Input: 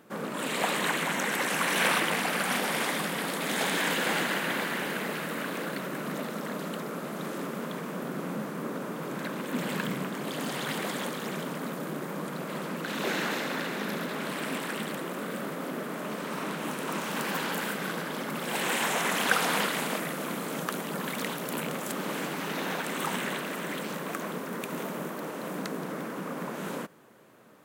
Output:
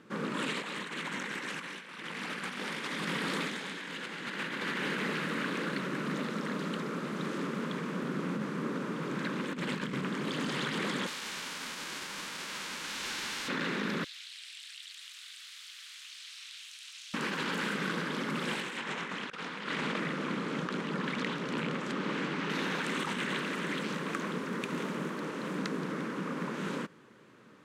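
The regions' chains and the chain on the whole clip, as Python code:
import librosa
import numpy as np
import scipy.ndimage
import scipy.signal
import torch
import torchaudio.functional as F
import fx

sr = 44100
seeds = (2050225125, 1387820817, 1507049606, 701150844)

y = fx.envelope_flatten(x, sr, power=0.3, at=(11.06, 13.47), fade=0.02)
y = fx.highpass(y, sr, hz=430.0, slope=12, at=(11.06, 13.47), fade=0.02)
y = fx.clip_hard(y, sr, threshold_db=-33.0, at=(11.06, 13.47), fade=0.02)
y = fx.chain(y, sr, fx.ladder_highpass(hz=2900.0, resonance_pct=25),
    fx.env_flatten(amount_pct=100), at=(14.04, 17.14))
y = fx.chain(y, sr, fx.median_filter(points=3),
    fx.high_shelf(hz=7000.0, db=-11.5), at=(18.77, 22.5))
y = scipy.signal.sosfilt(scipy.signal.butter(2, 5700.0, 'lowpass', fs=sr, output='sos'), y)
y = fx.peak_eq(y, sr, hz=690.0, db=-11.5, octaves=0.65)
y = fx.over_compress(y, sr, threshold_db=-34.0, ratio=-0.5)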